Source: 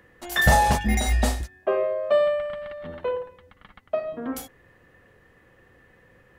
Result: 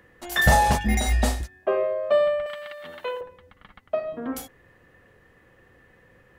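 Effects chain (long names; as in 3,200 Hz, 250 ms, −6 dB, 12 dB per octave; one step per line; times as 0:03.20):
0:02.46–0:03.21: spectral tilt +4.5 dB per octave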